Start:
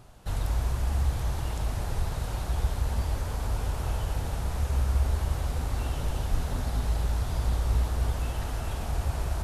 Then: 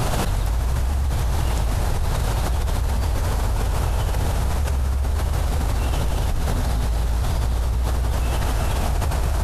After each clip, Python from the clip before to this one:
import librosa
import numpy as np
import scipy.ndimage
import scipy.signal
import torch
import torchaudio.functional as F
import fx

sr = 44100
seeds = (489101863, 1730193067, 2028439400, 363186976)

y = fx.env_flatten(x, sr, amount_pct=100)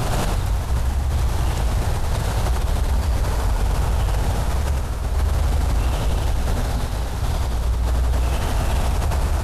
y = x + 10.0 ** (-3.5 / 20.0) * np.pad(x, (int(97 * sr / 1000.0), 0))[:len(x)]
y = 10.0 ** (-10.0 / 20.0) * np.tanh(y / 10.0 ** (-10.0 / 20.0))
y = fx.doppler_dist(y, sr, depth_ms=0.14)